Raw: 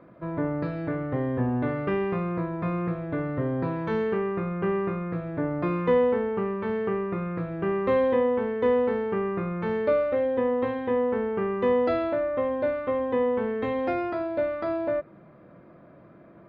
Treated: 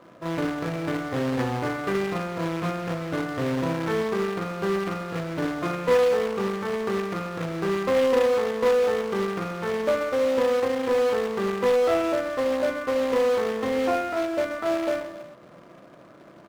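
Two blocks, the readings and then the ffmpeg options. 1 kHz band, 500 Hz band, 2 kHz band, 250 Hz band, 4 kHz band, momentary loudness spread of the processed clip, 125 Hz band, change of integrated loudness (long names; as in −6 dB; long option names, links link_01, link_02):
+2.5 dB, +2.0 dB, +4.5 dB, −0.5 dB, can't be measured, 8 LU, −1.5 dB, +1.5 dB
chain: -filter_complex "[0:a]aecho=1:1:30|72|130.8|213.1|328.4:0.631|0.398|0.251|0.158|0.1,acrusher=bits=2:mode=log:mix=0:aa=0.000001,asplit=2[link_01][link_02];[link_02]highpass=frequency=720:poles=1,volume=9dB,asoftclip=type=tanh:threshold=-10.5dB[link_03];[link_01][link_03]amix=inputs=2:normalize=0,lowpass=frequency=1600:poles=1,volume=-6dB"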